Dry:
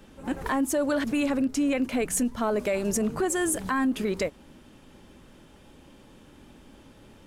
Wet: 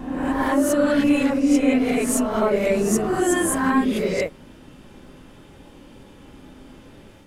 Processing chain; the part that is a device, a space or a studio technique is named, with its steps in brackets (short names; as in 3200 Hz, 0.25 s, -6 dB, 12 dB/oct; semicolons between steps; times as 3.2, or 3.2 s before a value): reverse reverb (reverse; reverb RT60 1.2 s, pre-delay 10 ms, DRR -5 dB; reverse)